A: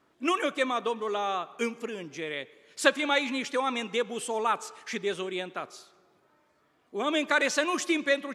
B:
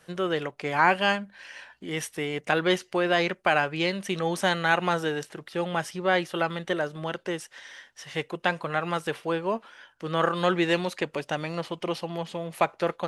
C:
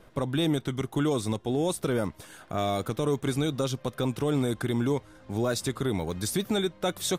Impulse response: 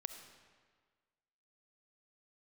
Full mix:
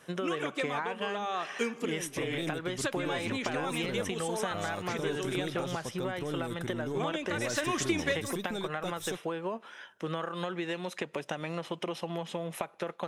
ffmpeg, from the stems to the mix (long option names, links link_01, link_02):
-filter_complex "[0:a]acompressor=threshold=-29dB:ratio=10,volume=2.5dB[link_01];[1:a]acompressor=threshold=-30dB:ratio=12,highpass=110,volume=1dB,asplit=3[link_02][link_03][link_04];[link_03]volume=-21.5dB[link_05];[2:a]aeval=exprs='0.168*(cos(1*acos(clip(val(0)/0.168,-1,1)))-cos(1*PI/2))+0.00841*(cos(6*acos(clip(val(0)/0.168,-1,1)))-cos(6*PI/2))':channel_layout=same,adelay=2000,volume=-8dB[link_06];[link_04]apad=whole_len=368115[link_07];[link_01][link_07]sidechaincompress=threshold=-34dB:ratio=8:attack=23:release=585[link_08];[link_02][link_06]amix=inputs=2:normalize=0,asuperstop=centerf=4500:order=4:qfactor=7.8,acompressor=threshold=-30dB:ratio=6,volume=0dB[link_09];[3:a]atrim=start_sample=2205[link_10];[link_05][link_10]afir=irnorm=-1:irlink=0[link_11];[link_08][link_09][link_11]amix=inputs=3:normalize=0"